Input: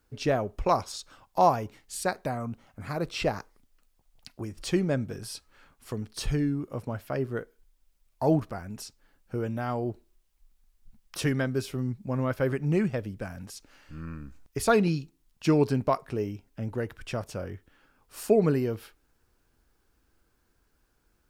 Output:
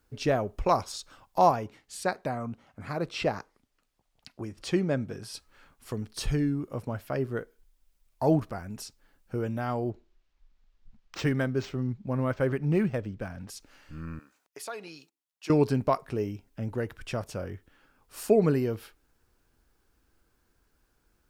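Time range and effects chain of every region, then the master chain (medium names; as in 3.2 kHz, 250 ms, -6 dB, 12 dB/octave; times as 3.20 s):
1.51–5.34 s: high-pass 98 Hz 6 dB/octave + treble shelf 8.5 kHz -10.5 dB
9.90–13.49 s: low-pass 11 kHz 24 dB/octave + decimation joined by straight lines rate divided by 4×
14.19–15.50 s: gate -53 dBFS, range -15 dB + high-pass 560 Hz + compression 2:1, threshold -45 dBFS
whole clip: none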